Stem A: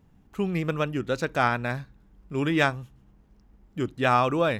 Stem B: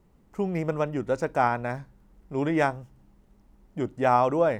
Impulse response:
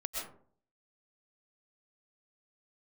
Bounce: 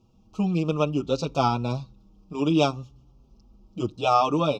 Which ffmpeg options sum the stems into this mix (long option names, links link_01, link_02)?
-filter_complex "[0:a]lowpass=frequency=5500:width_type=q:width=2.7,volume=2dB[link_01];[1:a]equalizer=frequency=4800:width_type=o:width=2.8:gain=-11.5,volume=-3.5dB[link_02];[link_01][link_02]amix=inputs=2:normalize=0,asuperstop=centerf=1800:order=8:qfactor=1.6,asplit=2[link_03][link_04];[link_04]adelay=5.7,afreqshift=-0.57[link_05];[link_03][link_05]amix=inputs=2:normalize=1"